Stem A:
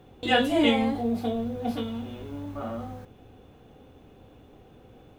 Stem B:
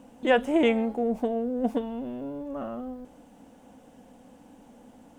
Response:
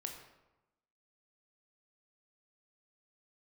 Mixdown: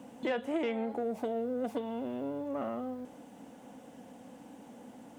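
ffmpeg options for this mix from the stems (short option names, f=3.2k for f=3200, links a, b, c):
-filter_complex "[0:a]acompressor=threshold=-31dB:ratio=3,volume=-17dB[a];[1:a]acrossover=split=330|2800[b][c][d];[b]acompressor=threshold=-42dB:ratio=4[e];[c]acompressor=threshold=-33dB:ratio=4[f];[d]acompressor=threshold=-58dB:ratio=4[g];[e][f][g]amix=inputs=3:normalize=0,asoftclip=type=tanh:threshold=-25.5dB,volume=1.5dB[h];[a][h]amix=inputs=2:normalize=0,highpass=120,equalizer=f=2k:w=6:g=2.5"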